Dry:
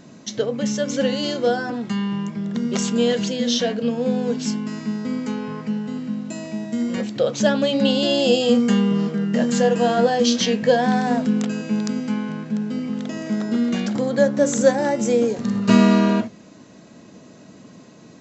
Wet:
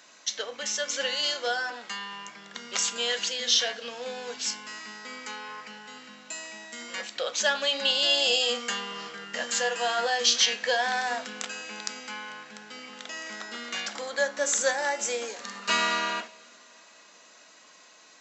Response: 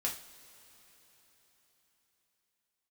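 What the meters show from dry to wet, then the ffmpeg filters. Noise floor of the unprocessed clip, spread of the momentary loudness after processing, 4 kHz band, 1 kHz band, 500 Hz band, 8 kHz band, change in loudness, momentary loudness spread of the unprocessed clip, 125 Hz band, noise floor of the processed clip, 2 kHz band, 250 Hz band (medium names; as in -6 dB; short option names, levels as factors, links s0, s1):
-46 dBFS, 17 LU, +2.0 dB, -5.0 dB, -12.5 dB, no reading, -6.5 dB, 10 LU, under -25 dB, -54 dBFS, +1.0 dB, -27.0 dB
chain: -filter_complex "[0:a]highpass=1200,asplit=2[s0][s1];[1:a]atrim=start_sample=2205[s2];[s1][s2]afir=irnorm=-1:irlink=0,volume=0.251[s3];[s0][s3]amix=inputs=2:normalize=0"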